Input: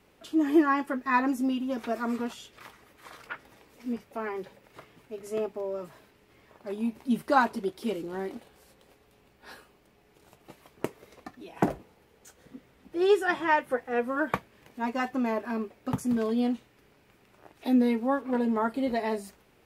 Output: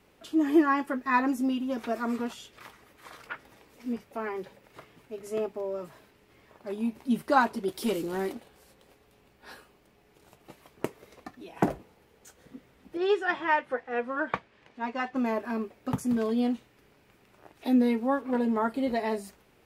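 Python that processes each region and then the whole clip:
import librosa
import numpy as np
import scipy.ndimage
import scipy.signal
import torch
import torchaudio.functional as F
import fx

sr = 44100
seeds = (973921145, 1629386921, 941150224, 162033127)

y = fx.chain(x, sr, fx.high_shelf(hz=4600.0, db=9.0),
    fx.leveller(passes=1), at=(7.68, 8.33))
y = fx.chain(y, sr, fx.lowpass(hz=4500.0, slope=12),
    fx.low_shelf(hz=430.0, db=-6.5), at=(12.97, 15.16))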